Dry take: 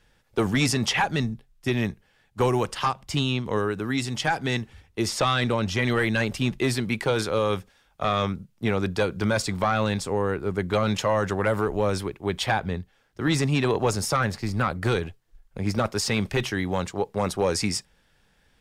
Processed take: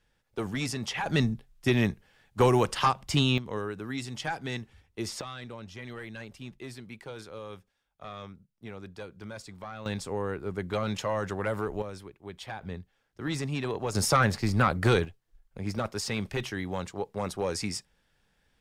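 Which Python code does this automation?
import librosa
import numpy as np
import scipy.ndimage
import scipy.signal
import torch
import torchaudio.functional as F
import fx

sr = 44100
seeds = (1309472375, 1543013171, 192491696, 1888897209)

y = fx.gain(x, sr, db=fx.steps((0.0, -9.5), (1.06, 0.5), (3.38, -8.5), (5.21, -18.0), (9.86, -7.0), (11.82, -15.5), (12.62, -9.0), (13.95, 1.0), (15.05, -7.0)))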